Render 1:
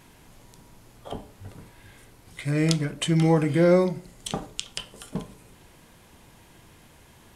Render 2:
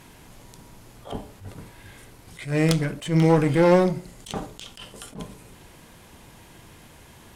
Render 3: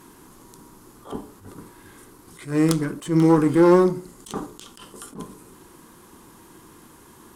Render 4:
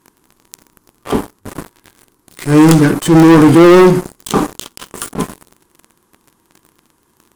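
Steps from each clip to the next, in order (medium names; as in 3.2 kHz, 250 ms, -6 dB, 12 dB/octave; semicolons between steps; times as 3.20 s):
one-sided clip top -27 dBFS; attacks held to a fixed rise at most 160 dB/s; trim +4.5 dB
FFT filter 110 Hz 0 dB, 350 Hz +14 dB, 640 Hz -1 dB, 1.1 kHz +13 dB, 2.3 kHz -1 dB, 9.7 kHz +10 dB; trim -7 dB
waveshaping leveller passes 5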